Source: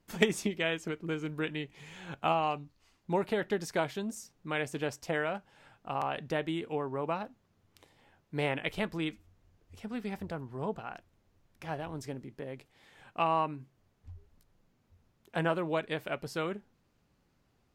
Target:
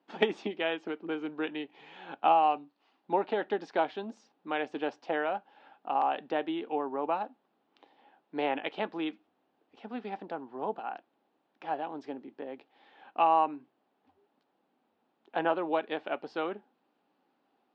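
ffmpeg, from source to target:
-af "highpass=f=250:w=0.5412,highpass=f=250:w=1.3066,equalizer=f=280:t=q:w=4:g=4,equalizer=f=800:t=q:w=4:g=9,equalizer=f=2100:t=q:w=4:g=-5,lowpass=f=3800:w=0.5412,lowpass=f=3800:w=1.3066"

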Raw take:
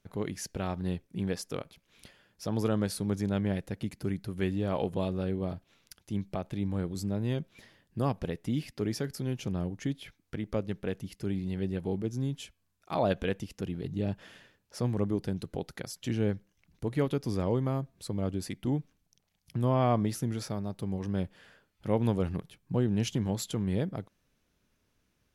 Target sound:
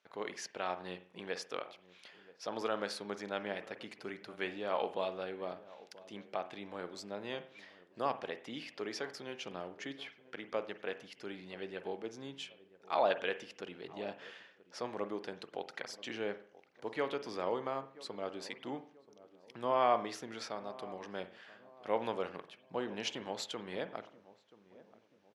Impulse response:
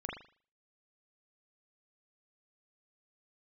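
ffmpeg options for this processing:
-filter_complex "[0:a]highpass=630,lowpass=4500,asplit=2[s0][s1];[s1]adelay=981,lowpass=f=910:p=1,volume=0.126,asplit=2[s2][s3];[s3]adelay=981,lowpass=f=910:p=1,volume=0.47,asplit=2[s4][s5];[s5]adelay=981,lowpass=f=910:p=1,volume=0.47,asplit=2[s6][s7];[s7]adelay=981,lowpass=f=910:p=1,volume=0.47[s8];[s0][s2][s4][s6][s8]amix=inputs=5:normalize=0,asplit=2[s9][s10];[1:a]atrim=start_sample=2205,asetrate=39249,aresample=44100[s11];[s10][s11]afir=irnorm=-1:irlink=0,volume=0.316[s12];[s9][s12]amix=inputs=2:normalize=0"

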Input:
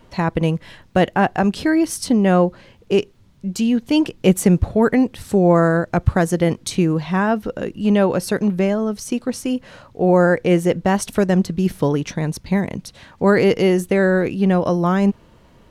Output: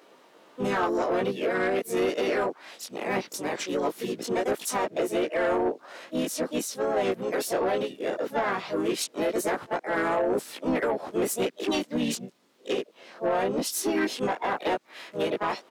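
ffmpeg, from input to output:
-filter_complex "[0:a]areverse,flanger=delay=19:depth=2.4:speed=0.2,highpass=f=310:w=0.5412,highpass=f=310:w=1.3066,alimiter=limit=0.141:level=0:latency=1:release=238,asplit=4[s0][s1][s2][s3];[s1]asetrate=29433,aresample=44100,atempo=1.49831,volume=0.282[s4];[s2]asetrate=37084,aresample=44100,atempo=1.18921,volume=0.282[s5];[s3]asetrate=55563,aresample=44100,atempo=0.793701,volume=0.708[s6];[s0][s4][s5][s6]amix=inputs=4:normalize=0,asoftclip=type=tanh:threshold=0.112"

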